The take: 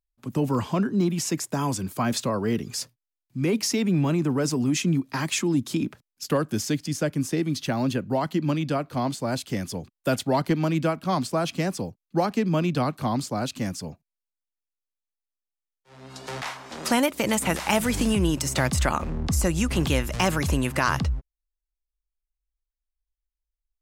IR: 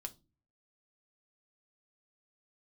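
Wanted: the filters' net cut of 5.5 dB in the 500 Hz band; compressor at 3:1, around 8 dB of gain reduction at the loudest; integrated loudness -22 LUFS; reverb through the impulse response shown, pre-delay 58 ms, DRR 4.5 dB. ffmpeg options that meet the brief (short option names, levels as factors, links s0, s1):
-filter_complex "[0:a]equalizer=f=500:t=o:g=-7.5,acompressor=threshold=0.0282:ratio=3,asplit=2[s0][s1];[1:a]atrim=start_sample=2205,adelay=58[s2];[s1][s2]afir=irnorm=-1:irlink=0,volume=0.891[s3];[s0][s3]amix=inputs=2:normalize=0,volume=3.16"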